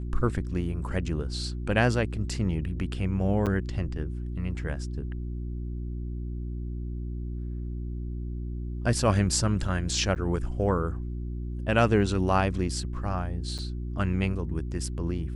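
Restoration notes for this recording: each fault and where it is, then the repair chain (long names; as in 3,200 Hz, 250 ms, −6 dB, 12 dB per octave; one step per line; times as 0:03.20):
mains hum 60 Hz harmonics 6 −33 dBFS
0:03.46–0:03.47: drop-out 7.5 ms
0:10.15–0:10.16: drop-out 9.2 ms
0:13.58–0:13.59: drop-out 6.7 ms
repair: hum removal 60 Hz, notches 6
repair the gap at 0:03.46, 7.5 ms
repair the gap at 0:10.15, 9.2 ms
repair the gap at 0:13.58, 6.7 ms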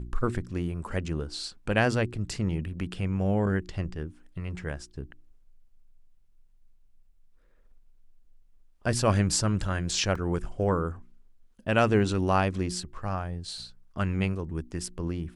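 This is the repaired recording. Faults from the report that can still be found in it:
none of them is left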